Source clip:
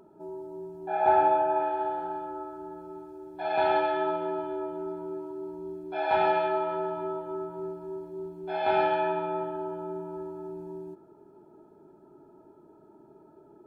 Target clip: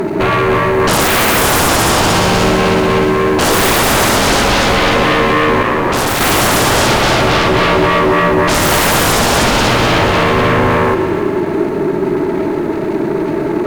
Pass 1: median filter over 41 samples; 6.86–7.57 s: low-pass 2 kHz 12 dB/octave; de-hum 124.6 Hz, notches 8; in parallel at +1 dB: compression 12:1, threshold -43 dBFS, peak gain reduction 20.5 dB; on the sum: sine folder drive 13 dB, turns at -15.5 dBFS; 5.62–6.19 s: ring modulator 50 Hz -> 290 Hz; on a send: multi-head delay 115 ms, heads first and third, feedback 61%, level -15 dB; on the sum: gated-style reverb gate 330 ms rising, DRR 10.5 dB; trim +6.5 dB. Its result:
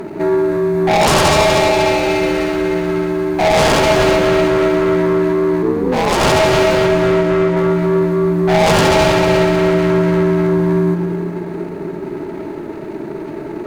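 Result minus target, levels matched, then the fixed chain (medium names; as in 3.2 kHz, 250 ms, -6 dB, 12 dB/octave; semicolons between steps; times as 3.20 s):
sine folder: distortion -25 dB
median filter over 41 samples; 6.86–7.57 s: low-pass 2 kHz 12 dB/octave; de-hum 124.6 Hz, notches 8; in parallel at +1 dB: compression 12:1, threshold -43 dBFS, peak gain reduction 20.5 dB; on the sum: sine folder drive 24 dB, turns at -15.5 dBFS; 5.62–6.19 s: ring modulator 50 Hz -> 290 Hz; on a send: multi-head delay 115 ms, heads first and third, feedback 61%, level -15 dB; on the sum: gated-style reverb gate 330 ms rising, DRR 10.5 dB; trim +6.5 dB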